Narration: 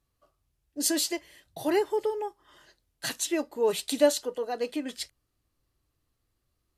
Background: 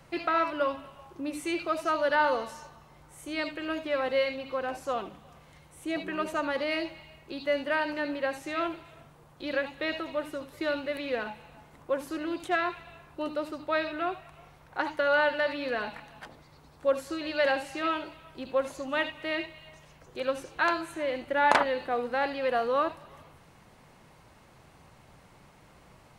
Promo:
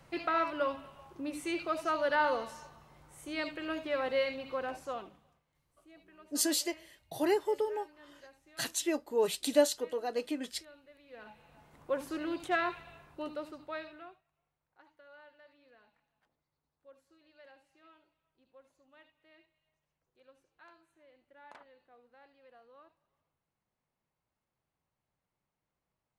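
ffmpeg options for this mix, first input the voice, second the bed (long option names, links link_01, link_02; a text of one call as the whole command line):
ffmpeg -i stem1.wav -i stem2.wav -filter_complex "[0:a]adelay=5550,volume=-3.5dB[link_01];[1:a]volume=19dB,afade=type=out:start_time=4.61:duration=0.82:silence=0.0794328,afade=type=in:start_time=11.08:duration=0.93:silence=0.0707946,afade=type=out:start_time=12.72:duration=1.51:silence=0.0354813[link_02];[link_01][link_02]amix=inputs=2:normalize=0" out.wav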